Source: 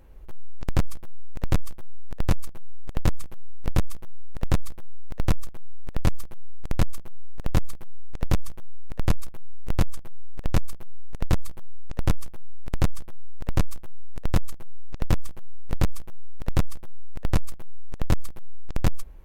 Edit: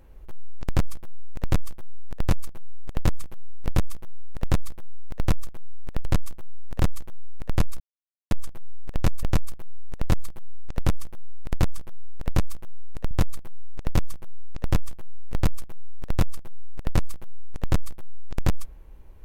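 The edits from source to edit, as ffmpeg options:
-filter_complex "[0:a]asplit=9[a][b][c][d][e][f][g][h][i];[a]atrim=end=6.052[j];[b]atrim=start=6.718:end=7.472[k];[c]atrim=start=14.318:end=14.582[l];[d]atrim=start=8.558:end=9.3,asetpts=PTS-STARTPTS,afade=t=out:st=0.738:d=0.004:c=hsin[m];[e]atrim=start=9.3:end=9.81,asetpts=PTS-STARTPTS,volume=0[n];[f]atrim=start=9.81:end=10.732,asetpts=PTS-STARTPTS,afade=t=in:d=0.004:c=hsin[o];[g]atrim=start=10.438:end=14.322[p];[h]atrim=start=7.468:end=8.562[q];[i]atrim=start=14.578[r];[j][k]acrossfade=d=0.004:c1=hsin:c2=hsin[s];[s][l]acrossfade=d=0.004:c1=hsin:c2=hsin[t];[m][n][o]concat=n=3:v=0:a=1[u];[t][u]acrossfade=d=0.004:c1=hsin:c2=hsin[v];[v][p]acrossfade=d=0.004:c1=hsin:c2=hsin[w];[w][q]acrossfade=d=0.004:c1=hsin:c2=hsin[x];[x][r]acrossfade=d=0.004:c1=hsin:c2=hsin"

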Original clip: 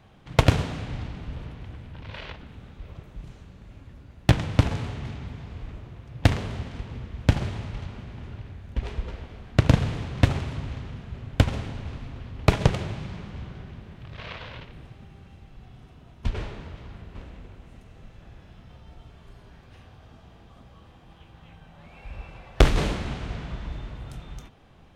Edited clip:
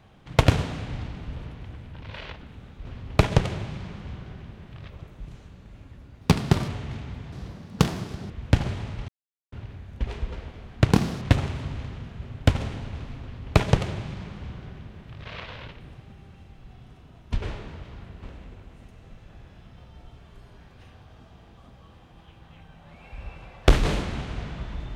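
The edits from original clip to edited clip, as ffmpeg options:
-filter_complex "[0:a]asplit=11[a][b][c][d][e][f][g][h][i][j][k];[a]atrim=end=2.852[l];[b]atrim=start=12.138:end=14.182[m];[c]atrim=start=2.848:end=4.174[n];[d]atrim=start=4.17:end=4.82,asetpts=PTS-STARTPTS,asetrate=60858,aresample=44100[o];[e]atrim=start=4.816:end=5.464[p];[f]atrim=start=5.46:end=7.06,asetpts=PTS-STARTPTS,asetrate=71883,aresample=44100,atrim=end_sample=43288,asetpts=PTS-STARTPTS[q];[g]atrim=start=7.056:end=7.84,asetpts=PTS-STARTPTS,afade=t=out:st=0.78:d=0.004:c=hsin[r];[h]atrim=start=7.84:end=8.28,asetpts=PTS-STARTPTS,volume=0[s];[i]atrim=start=8.28:end=9.694,asetpts=PTS-STARTPTS,afade=t=in:d=0.004:c=hsin[t];[j]atrim=start=9.69:end=10.14,asetpts=PTS-STARTPTS,asetrate=70119,aresample=44100,atrim=end_sample=12481,asetpts=PTS-STARTPTS[u];[k]atrim=start=10.136[v];[l][m]acrossfade=d=0.004:c1=hsin:c2=hsin[w];[w][n]acrossfade=d=0.004:c1=hsin:c2=hsin[x];[x][o]acrossfade=d=0.004:c1=hsin:c2=hsin[y];[y][p]acrossfade=d=0.004:c1=hsin:c2=hsin[z];[z][q]acrossfade=d=0.004:c1=hsin:c2=hsin[aa];[r][s][t]concat=n=3:v=0:a=1[ab];[aa][ab]acrossfade=d=0.004:c1=hsin:c2=hsin[ac];[ac][u]acrossfade=d=0.004:c1=hsin:c2=hsin[ad];[ad][v]acrossfade=d=0.004:c1=hsin:c2=hsin"

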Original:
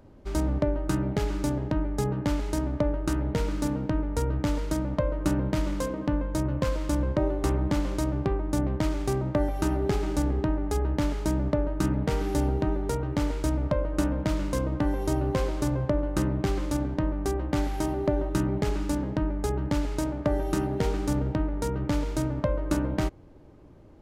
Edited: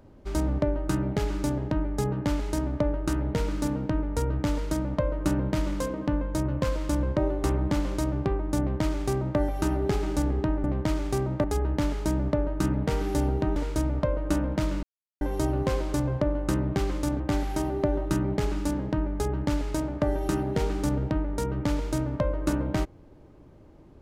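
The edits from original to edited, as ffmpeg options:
-filter_complex "[0:a]asplit=7[a][b][c][d][e][f][g];[a]atrim=end=10.642[h];[b]atrim=start=8.588:end=9.392[i];[c]atrim=start=10.638:end=12.762[j];[d]atrim=start=13.238:end=14.51,asetpts=PTS-STARTPTS,afade=t=out:st=1.268:d=0.004:c=hsin[k];[e]atrim=start=14.51:end=14.89,asetpts=PTS-STARTPTS,volume=0[l];[f]atrim=start=14.89:end=16.882,asetpts=PTS-STARTPTS,afade=t=in:d=0.004:c=hsin[m];[g]atrim=start=17.438[n];[h][i]acrossfade=d=0.004:c1=hsin:c2=hsin[o];[o][j]acrossfade=d=0.004:c1=hsin:c2=hsin[p];[k][l][m]concat=n=3:v=0:a=1[q];[p][q]acrossfade=d=0.004:c1=hsin:c2=hsin[r];[r][n]acrossfade=d=0.004:c1=hsin:c2=hsin"

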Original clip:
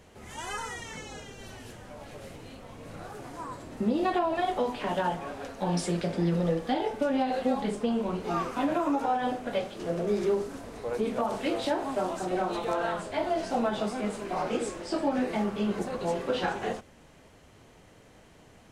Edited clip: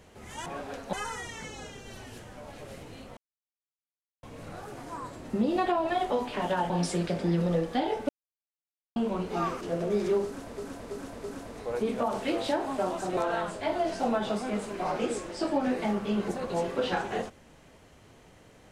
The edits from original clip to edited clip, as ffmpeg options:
-filter_complex "[0:a]asplit=12[a][b][c][d][e][f][g][h][i][j][k][l];[a]atrim=end=0.462[m];[b]atrim=start=5.168:end=5.642[n];[c]atrim=start=0.458:end=2.7,asetpts=PTS-STARTPTS,afade=t=out:st=2.238:d=0.004:c=hsin,apad=pad_dur=1.06[o];[d]atrim=start=2.7:end=5.172,asetpts=PTS-STARTPTS,afade=t=in:d=0.004:c=hsin[p];[e]atrim=start=5.638:end=7.03,asetpts=PTS-STARTPTS,afade=t=out:st=1.388:d=0.004:c=hsin[q];[f]atrim=start=7.03:end=7.9,asetpts=PTS-STARTPTS,volume=0[r];[g]atrim=start=7.9:end=8.552,asetpts=PTS-STARTPTS,afade=t=in:d=0.004:c=hsin[s];[h]atrim=start=9.778:end=10.752[t];[i]atrim=start=10.418:end=10.752[u];[j]atrim=start=10.418:end=10.752[v];[k]atrim=start=10.418:end=12.352[w];[l]atrim=start=12.678[x];[m][n]acrossfade=d=0.004:c1=hsin:c2=hsin[y];[o][p]concat=n=2:v=0:a=1[z];[y][z]acrossfade=d=0.004:c1=hsin:c2=hsin[aa];[q][r][s]concat=n=3:v=0:a=1[ab];[aa][ab]acrossfade=d=0.004:c1=hsin:c2=hsin[ac];[ac][t]acrossfade=d=0.004:c1=hsin:c2=hsin[ad];[ad][u]acrossfade=d=0.004:c1=hsin:c2=hsin[ae];[ae][v]acrossfade=d=0.004:c1=hsin:c2=hsin[af];[af][w]acrossfade=d=0.004:c1=hsin:c2=hsin[ag];[ag][x]acrossfade=d=0.004:c1=hsin:c2=hsin"

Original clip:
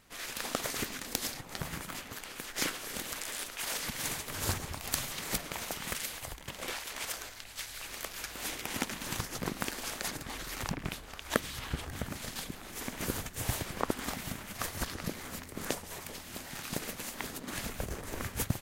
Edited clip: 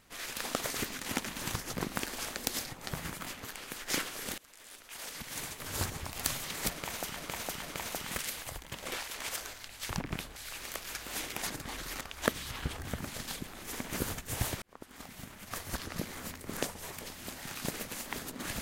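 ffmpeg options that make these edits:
-filter_complex "[0:a]asplit=11[a][b][c][d][e][f][g][h][i][j][k];[a]atrim=end=1.062[l];[b]atrim=start=8.708:end=10.032[m];[c]atrim=start=1.058:end=3.06,asetpts=PTS-STARTPTS,afade=t=out:st=1.998:d=0.004:c=hsin:silence=0.0630957[n];[d]atrim=start=3.06:end=5.842,asetpts=PTS-STARTPTS,afade=t=in:d=1.74:silence=0.0630957[o];[e]atrim=start=5.378:end=5.842[p];[f]atrim=start=5.378:end=7.652[q];[g]atrim=start=10.618:end=11.092[r];[h]atrim=start=7.648:end=8.712[s];[i]atrim=start=10.028:end=10.622[t];[j]atrim=start=11.088:end=13.7,asetpts=PTS-STARTPTS,afade=t=out:st=2.608:d=0.004:c=hsin[u];[k]atrim=start=13.7,asetpts=PTS-STARTPTS,afade=t=in:d=1.42[v];[l][m]acrossfade=d=0.004:c1=hsin:c2=hsin[w];[n][o]concat=n=2:v=0:a=1[x];[w][x]acrossfade=d=0.004:c1=hsin:c2=hsin[y];[y][p]acrossfade=d=0.004:c1=hsin:c2=hsin[z];[z][q]acrossfade=d=0.004:c1=hsin:c2=hsin[aa];[aa][r]acrossfade=d=0.004:c1=hsin:c2=hsin[ab];[ab][s]acrossfade=d=0.004:c1=hsin:c2=hsin[ac];[ac][t]acrossfade=d=0.004:c1=hsin:c2=hsin[ad];[u][v]concat=n=2:v=0:a=1[ae];[ad][ae]acrossfade=d=0.004:c1=hsin:c2=hsin"

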